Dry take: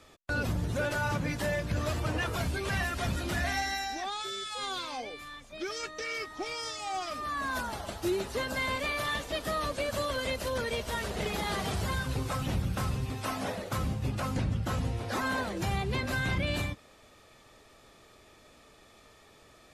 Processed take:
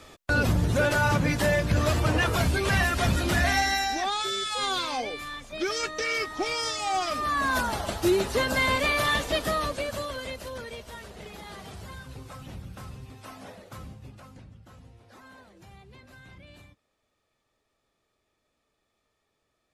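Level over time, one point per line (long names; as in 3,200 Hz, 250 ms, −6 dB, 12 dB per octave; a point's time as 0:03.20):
0:09.32 +7.5 dB
0:10.09 −2 dB
0:11.18 −10 dB
0:13.80 −10 dB
0:14.53 −19.5 dB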